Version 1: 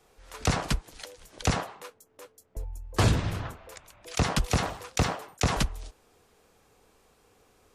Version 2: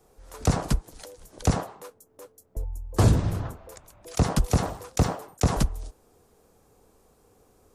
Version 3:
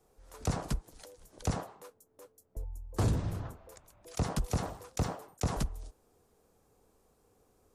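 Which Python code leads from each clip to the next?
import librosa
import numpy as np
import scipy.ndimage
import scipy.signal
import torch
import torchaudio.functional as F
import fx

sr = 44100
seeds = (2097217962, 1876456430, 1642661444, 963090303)

y1 = fx.peak_eq(x, sr, hz=2600.0, db=-12.0, octaves=2.3)
y1 = y1 * librosa.db_to_amplitude(4.5)
y2 = 10.0 ** (-12.5 / 20.0) * np.tanh(y1 / 10.0 ** (-12.5 / 20.0))
y2 = y2 * librosa.db_to_amplitude(-8.0)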